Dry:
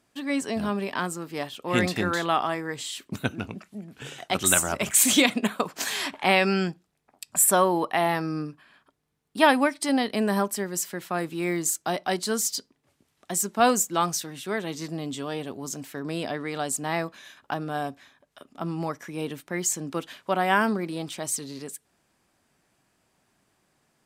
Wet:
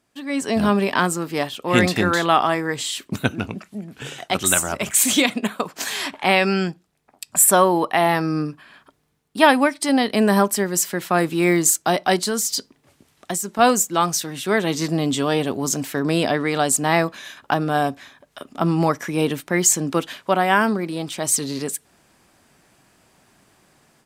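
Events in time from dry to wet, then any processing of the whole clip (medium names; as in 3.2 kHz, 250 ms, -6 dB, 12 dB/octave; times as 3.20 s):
12.17–13.59 s: compression, threshold -27 dBFS
whole clip: level rider gain up to 13 dB; trim -1 dB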